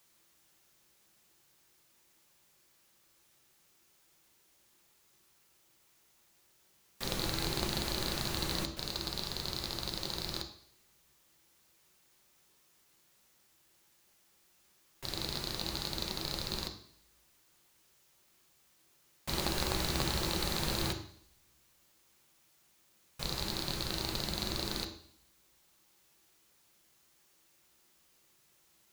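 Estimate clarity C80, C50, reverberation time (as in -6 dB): 12.5 dB, 9.5 dB, 0.60 s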